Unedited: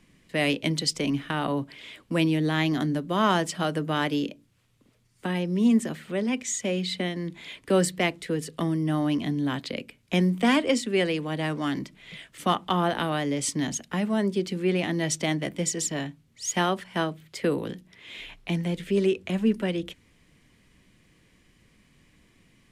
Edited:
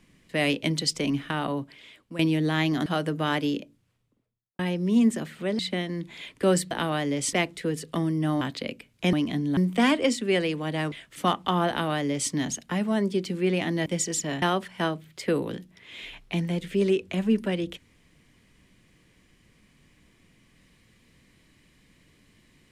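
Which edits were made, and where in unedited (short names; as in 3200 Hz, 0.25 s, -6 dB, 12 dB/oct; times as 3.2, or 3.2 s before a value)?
1.29–2.19 fade out, to -12.5 dB
2.86–3.55 cut
4.14–5.28 studio fade out
6.28–6.86 cut
9.06–9.5 move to 10.22
11.57–12.14 cut
12.91–13.53 copy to 7.98
15.08–15.53 cut
16.09–16.58 cut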